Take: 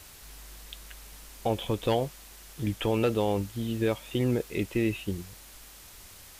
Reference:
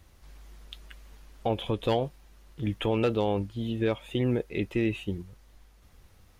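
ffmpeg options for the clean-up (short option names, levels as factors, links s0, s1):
-af "afwtdn=0.0035"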